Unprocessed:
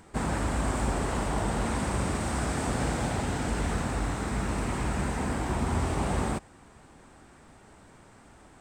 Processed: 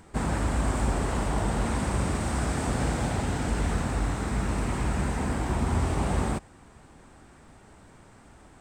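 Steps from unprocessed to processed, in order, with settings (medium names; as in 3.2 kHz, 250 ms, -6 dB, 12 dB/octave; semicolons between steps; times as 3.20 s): bass shelf 150 Hz +4 dB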